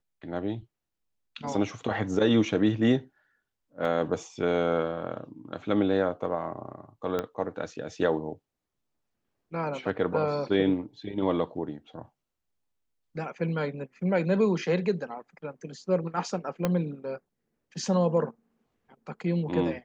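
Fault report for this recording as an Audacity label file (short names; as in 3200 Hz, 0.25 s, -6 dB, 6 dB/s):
3.850000	3.850000	gap 2.1 ms
7.190000	7.190000	pop -16 dBFS
16.650000	16.650000	pop -12 dBFS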